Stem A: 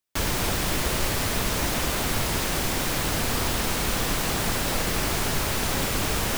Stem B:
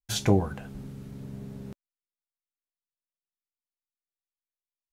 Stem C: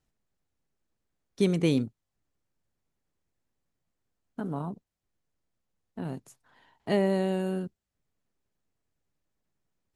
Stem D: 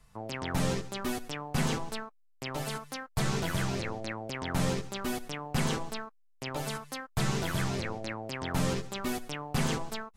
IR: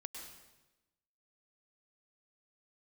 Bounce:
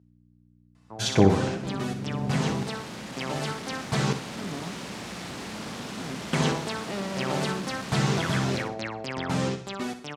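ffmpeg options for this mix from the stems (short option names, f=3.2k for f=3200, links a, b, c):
-filter_complex "[0:a]aeval=exprs='val(0)*sin(2*PI*200*n/s)':c=same,asoftclip=type=tanh:threshold=-23.5dB,adelay=2250,volume=-12.5dB,asplit=2[a][b];[b]volume=-5.5dB[c];[1:a]dynaudnorm=f=450:g=3:m=6dB,adelay=900,volume=0.5dB,asplit=3[d][e][f];[e]volume=-6.5dB[g];[f]volume=-5dB[h];[2:a]aeval=exprs='val(0)+0.00562*(sin(2*PI*60*n/s)+sin(2*PI*2*60*n/s)/2+sin(2*PI*3*60*n/s)/3+sin(2*PI*4*60*n/s)/4+sin(2*PI*5*60*n/s)/5)':c=same,asoftclip=type=hard:threshold=-29.5dB,volume=-8dB[i];[3:a]adelay=750,volume=-2dB,asplit=3[j][k][l];[j]atrim=end=4.13,asetpts=PTS-STARTPTS,afade=t=out:st=4.126:d=0.004:c=hsin[m];[k]atrim=start=4.13:end=6.33,asetpts=PTS-STARTPTS,volume=0[n];[l]atrim=start=6.33,asetpts=PTS-STARTPTS,afade=t=in:d=0.004:c=hsin[o];[m][n][o]concat=n=3:v=0:a=1,asplit=3[p][q][r];[q]volume=-14.5dB[s];[r]volume=-9.5dB[t];[4:a]atrim=start_sample=2205[u];[g][s]amix=inputs=2:normalize=0[v];[v][u]afir=irnorm=-1:irlink=0[w];[c][h][t]amix=inputs=3:normalize=0,aecho=0:1:61|122|183|244:1|0.31|0.0961|0.0298[x];[a][d][i][p][w][x]amix=inputs=6:normalize=0,dynaudnorm=f=210:g=21:m=6.5dB,highpass=110,lowpass=6.8k"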